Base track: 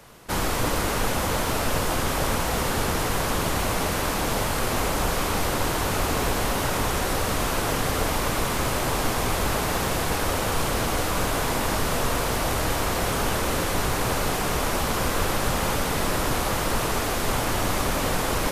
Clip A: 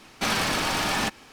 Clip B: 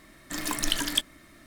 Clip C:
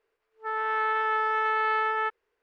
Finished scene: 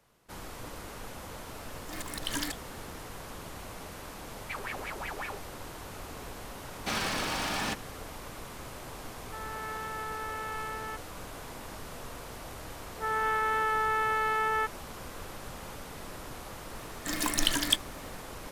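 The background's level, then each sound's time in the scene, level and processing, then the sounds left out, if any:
base track -18.5 dB
1.55 add B -2.5 dB + auto swell 0.192 s
4.28 add A -1.5 dB + wah 5.4 Hz 390–2300 Hz, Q 7.1
6.65 add A -7 dB
8.87 add C -12 dB
12.57 add C -0.5 dB + limiter -19 dBFS
16.75 add B

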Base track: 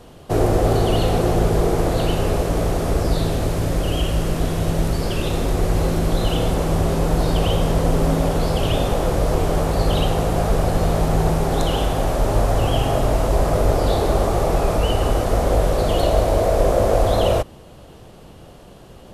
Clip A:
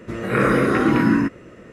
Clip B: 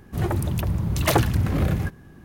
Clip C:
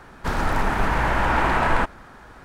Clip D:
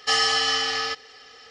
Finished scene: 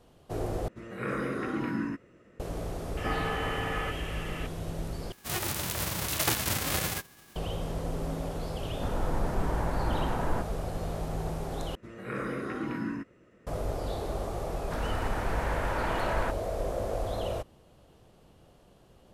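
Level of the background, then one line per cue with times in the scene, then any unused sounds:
base track -15.5 dB
0.68 replace with A -15 dB
2.97 add D -4.5 dB + delta modulation 16 kbps, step -30 dBFS
5.12 replace with B -9 dB + spectral whitening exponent 0.3
8.57 add C -16.5 dB + tilt shelf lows +9.5 dB, about 1300 Hz
11.75 replace with A -17 dB
14.46 add C -12 dB

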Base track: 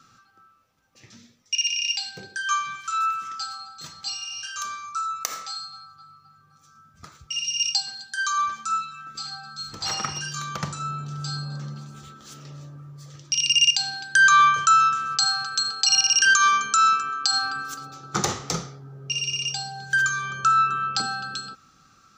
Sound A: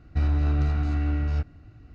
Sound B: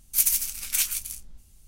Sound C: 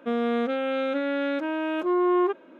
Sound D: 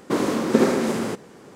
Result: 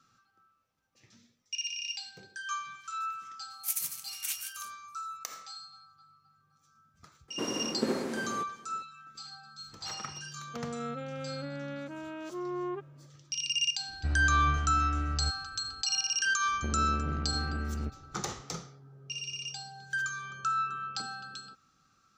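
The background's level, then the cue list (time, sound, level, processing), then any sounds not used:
base track -11.5 dB
3.5 add B -10 dB + elliptic high-pass 730 Hz
7.28 add D -13 dB
10.48 add C -13.5 dB
13.88 add A -7.5 dB
16.47 add A -6.5 dB + core saturation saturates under 270 Hz

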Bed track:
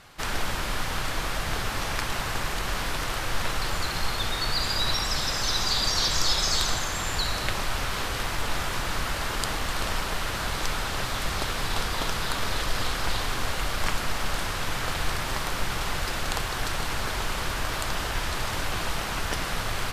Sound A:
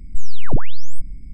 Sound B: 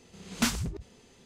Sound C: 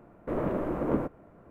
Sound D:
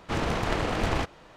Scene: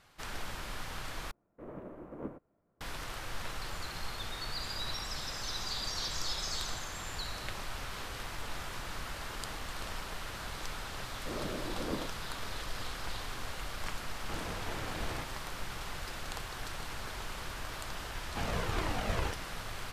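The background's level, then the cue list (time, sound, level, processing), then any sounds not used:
bed track -12 dB
1.31 replace with C -13 dB + upward expander, over -40 dBFS
10.99 add C -10 dB
14.19 add D -17.5 dB + sample leveller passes 1
18.26 add D -3.5 dB + cascading flanger falling 1.7 Hz
not used: A, B

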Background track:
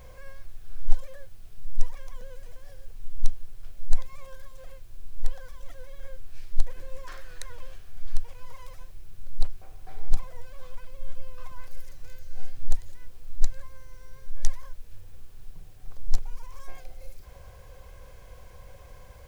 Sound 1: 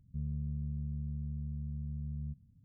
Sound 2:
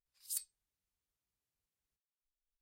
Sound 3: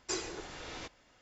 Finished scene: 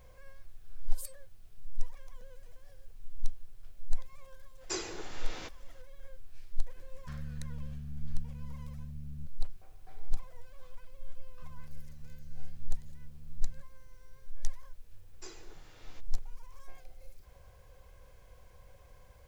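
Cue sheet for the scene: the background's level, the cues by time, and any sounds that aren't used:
background track -9 dB
0.68 add 2 -5.5 dB
4.61 add 3 -0.5 dB + HPF 63 Hz
6.93 add 1 -5 dB
11.28 add 1 -11 dB + compressor, threshold -38 dBFS
15.13 add 3 -13.5 dB

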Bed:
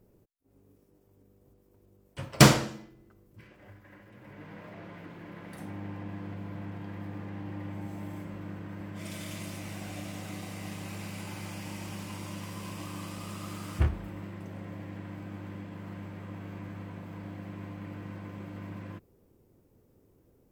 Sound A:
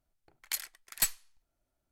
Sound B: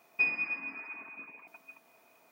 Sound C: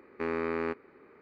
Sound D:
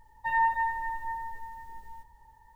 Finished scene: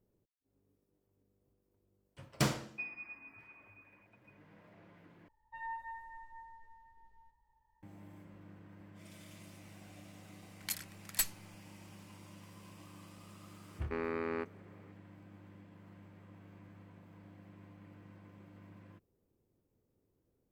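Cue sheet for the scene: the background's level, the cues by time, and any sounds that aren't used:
bed -14.5 dB
2.59 add B -13.5 dB + LPF 3700 Hz
5.28 replace with D -17.5 dB + low-pass opened by the level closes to 2600 Hz, open at -26 dBFS
10.17 add A -4 dB
13.71 add C -5.5 dB

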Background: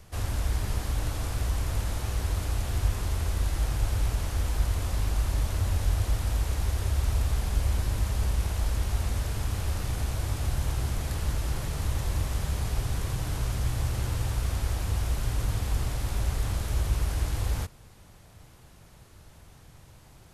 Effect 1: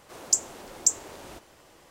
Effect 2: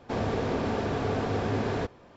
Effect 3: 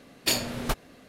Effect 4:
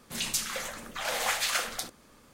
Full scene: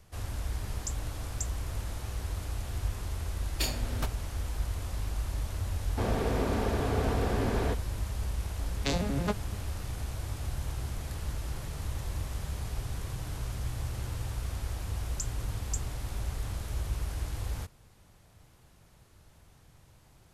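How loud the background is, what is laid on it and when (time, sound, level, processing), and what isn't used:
background -6.5 dB
0.54 add 1 -16.5 dB
3.33 add 3 -8 dB
5.88 add 2 -2 dB
8.58 add 3 -1 dB + arpeggiated vocoder major triad, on C#3, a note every 85 ms
14.87 add 1 -16 dB + downsampling 32000 Hz
not used: 4

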